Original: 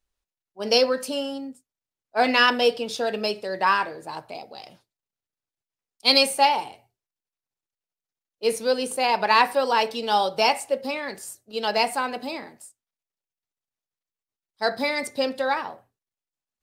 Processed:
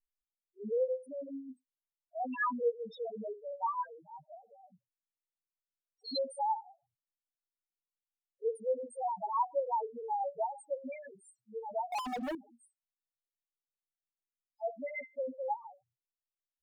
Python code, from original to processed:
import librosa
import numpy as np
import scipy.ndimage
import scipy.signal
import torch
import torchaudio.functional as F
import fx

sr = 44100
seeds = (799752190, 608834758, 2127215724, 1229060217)

y = fx.spec_topn(x, sr, count=1)
y = fx.leveller(y, sr, passes=5, at=(11.92, 12.35))
y = fx.harmonic_tremolo(y, sr, hz=5.9, depth_pct=70, crossover_hz=480.0)
y = y * 10.0 ** (-1.5 / 20.0)